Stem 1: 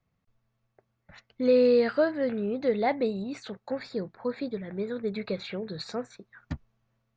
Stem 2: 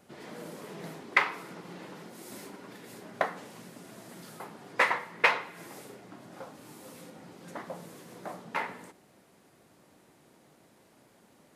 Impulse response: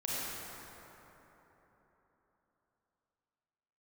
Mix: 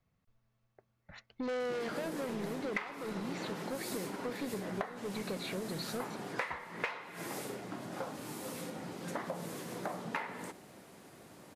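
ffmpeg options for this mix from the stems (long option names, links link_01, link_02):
-filter_complex "[0:a]asoftclip=type=tanh:threshold=-30dB,volume=-1dB[link_01];[1:a]acontrast=83,adelay=1600,volume=-1dB[link_02];[link_01][link_02]amix=inputs=2:normalize=0,acompressor=threshold=-34dB:ratio=16"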